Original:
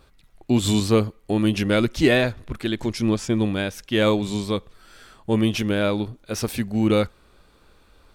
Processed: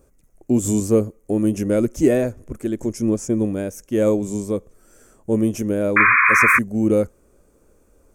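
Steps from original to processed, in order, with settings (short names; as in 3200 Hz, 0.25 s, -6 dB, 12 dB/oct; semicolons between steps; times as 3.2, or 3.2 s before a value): EQ curve 160 Hz 0 dB, 240 Hz +4 dB, 560 Hz +5 dB, 810 Hz -5 dB, 2400 Hz -10 dB, 4000 Hz -21 dB, 6400 Hz +7 dB, 9500 Hz +5 dB; painted sound noise, 5.96–6.59, 1000–2500 Hz -12 dBFS; gain -2 dB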